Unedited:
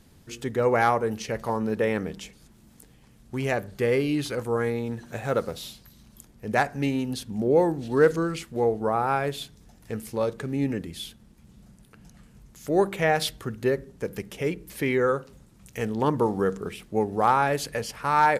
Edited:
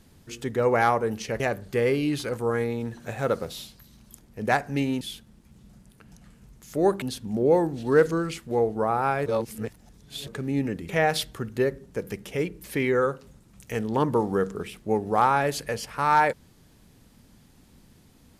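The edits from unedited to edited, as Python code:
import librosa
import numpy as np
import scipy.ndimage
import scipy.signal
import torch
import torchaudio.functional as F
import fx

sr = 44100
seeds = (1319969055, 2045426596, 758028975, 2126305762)

y = fx.edit(x, sr, fx.cut(start_s=1.4, length_s=2.06),
    fx.reverse_span(start_s=9.31, length_s=1.01),
    fx.move(start_s=10.94, length_s=2.01, to_s=7.07), tone=tone)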